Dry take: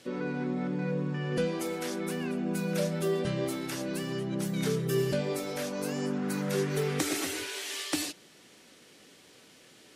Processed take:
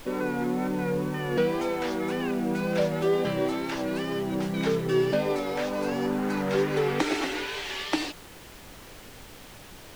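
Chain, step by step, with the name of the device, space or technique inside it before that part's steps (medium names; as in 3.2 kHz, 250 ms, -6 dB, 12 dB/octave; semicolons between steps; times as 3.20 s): horn gramophone (band-pass 200–3600 Hz; peaking EQ 870 Hz +7 dB 0.34 oct; wow and flutter; pink noise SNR 19 dB); trim +5.5 dB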